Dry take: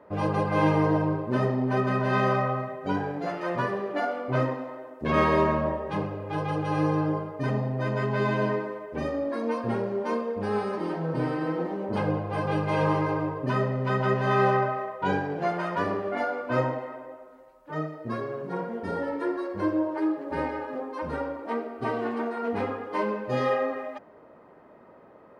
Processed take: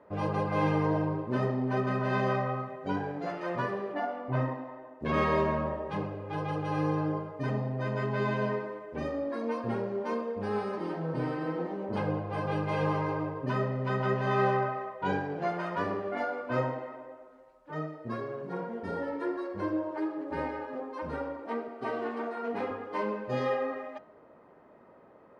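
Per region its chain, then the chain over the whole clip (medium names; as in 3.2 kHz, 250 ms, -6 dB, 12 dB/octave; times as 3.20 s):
3.94–5.02 s: treble shelf 3.1 kHz -10.5 dB + comb 1.1 ms, depth 38%
21.68–22.71 s: high-pass 200 Hz + doubling 37 ms -12 dB
whole clip: Bessel low-pass 8.1 kHz, order 2; de-hum 313.6 Hz, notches 27; trim -4 dB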